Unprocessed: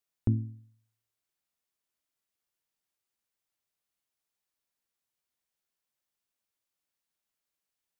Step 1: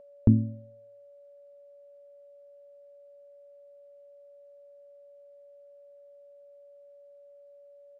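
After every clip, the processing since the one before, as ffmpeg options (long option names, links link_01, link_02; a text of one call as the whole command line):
ffmpeg -i in.wav -af "lowpass=frequency=1100:poles=1,aeval=exprs='val(0)+0.00158*sin(2*PI*570*n/s)':channel_layout=same,aecho=1:1:4.5:0.33,volume=8.5dB" out.wav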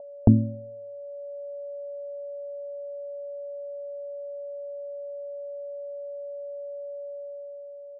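ffmpeg -i in.wav -af "lowpass=frequency=1000:width=0.5412,lowpass=frequency=1000:width=1.3066,equalizer=frequency=720:width_type=o:width=0.88:gain=14,dynaudnorm=framelen=150:gausssize=11:maxgain=6dB,volume=2.5dB" out.wav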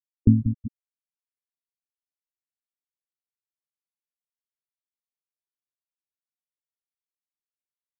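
ffmpeg -i in.wav -filter_complex "[0:a]asplit=2[link_01][link_02];[link_02]aecho=0:1:187|374|561|748|935|1122|1309:0.422|0.236|0.132|0.0741|0.0415|0.0232|0.013[link_03];[link_01][link_03]amix=inputs=2:normalize=0,afftfilt=real='re*gte(hypot(re,im),0.447)':imag='im*gte(hypot(re,im),0.447)':win_size=1024:overlap=0.75" out.wav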